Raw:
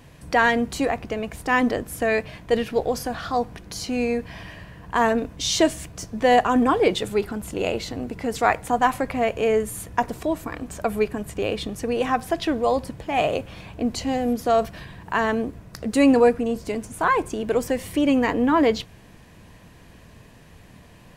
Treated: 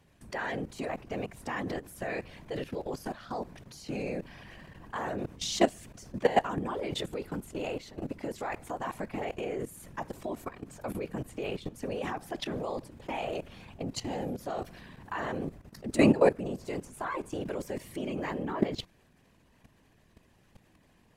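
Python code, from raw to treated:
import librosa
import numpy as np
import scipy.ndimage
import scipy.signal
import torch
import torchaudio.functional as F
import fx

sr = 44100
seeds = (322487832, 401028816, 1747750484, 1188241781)

y = fx.whisperise(x, sr, seeds[0])
y = fx.level_steps(y, sr, step_db=15)
y = y * librosa.db_to_amplitude(-4.0)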